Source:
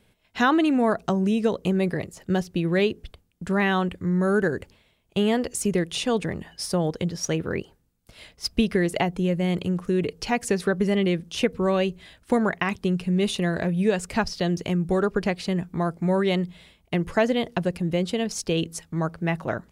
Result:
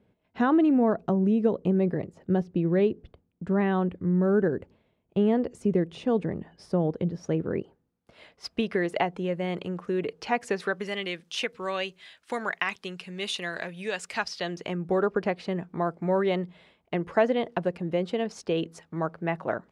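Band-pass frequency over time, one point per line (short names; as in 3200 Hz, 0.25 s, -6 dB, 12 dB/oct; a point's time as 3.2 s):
band-pass, Q 0.51
7.47 s 290 Hz
8.5 s 950 Hz
10.43 s 950 Hz
10.96 s 2700 Hz
14.23 s 2700 Hz
14.89 s 710 Hz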